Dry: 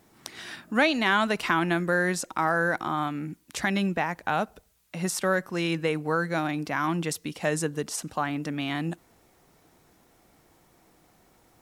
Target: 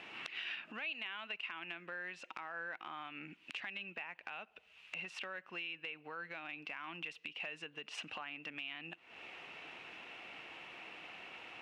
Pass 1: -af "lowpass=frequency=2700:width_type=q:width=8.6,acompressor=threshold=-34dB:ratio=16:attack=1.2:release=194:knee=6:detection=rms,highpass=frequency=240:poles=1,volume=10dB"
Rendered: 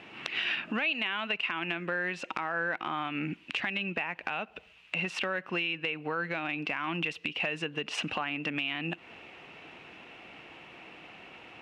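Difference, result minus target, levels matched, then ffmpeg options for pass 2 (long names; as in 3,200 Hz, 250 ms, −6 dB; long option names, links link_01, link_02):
downward compressor: peak gain reduction −11 dB; 250 Hz band +5.5 dB
-af "lowpass=frequency=2700:width_type=q:width=8.6,acompressor=threshold=-45.5dB:ratio=16:attack=1.2:release=194:knee=6:detection=rms,highpass=frequency=810:poles=1,volume=10dB"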